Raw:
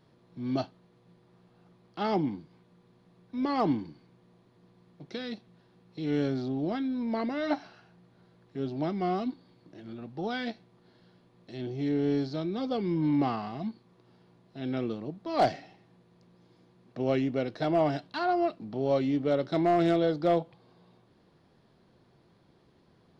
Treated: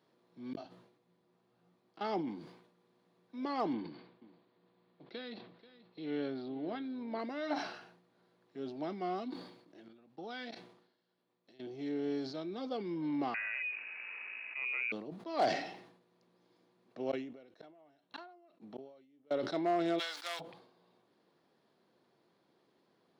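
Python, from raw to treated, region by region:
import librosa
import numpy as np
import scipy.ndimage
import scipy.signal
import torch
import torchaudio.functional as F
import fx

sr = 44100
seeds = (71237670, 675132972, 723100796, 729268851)

y = fx.chain(x, sr, fx.low_shelf(hz=130.0, db=11.0),
    fx.gate_flip(shuts_db=-29.0, range_db=-38),
    fx.detune_double(cents=26), at=(0.53, 2.01))
y = fx.chain(y, sr, fx.steep_lowpass(hz=4600.0, slope=48),
    fx.echo_single(ms=485, db=-16.5), at=(3.73, 7.19))
y = fx.chain(y, sr, fx.lowpass(hz=3800.0, slope=6),
    fx.high_shelf(hz=3000.0, db=7.5),
    fx.level_steps(step_db=18), at=(9.88, 11.62))
y = fx.chain(y, sr, fx.freq_invert(carrier_hz=2700),
    fx.env_flatten(amount_pct=70), at=(13.34, 14.92))
y = fx.chain(y, sr, fx.notch(hz=4800.0, q=5.8),
    fx.gate_flip(shuts_db=-25.0, range_db=-31), at=(17.11, 19.31))
y = fx.envelope_flatten(y, sr, power=0.6, at=(19.98, 20.39), fade=0.02)
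y = fx.highpass(y, sr, hz=1400.0, slope=12, at=(19.98, 20.39), fade=0.02)
y = scipy.signal.sosfilt(scipy.signal.butter(2, 270.0, 'highpass', fs=sr, output='sos'), y)
y = fx.sustainer(y, sr, db_per_s=76.0)
y = F.gain(torch.from_numpy(y), -6.5).numpy()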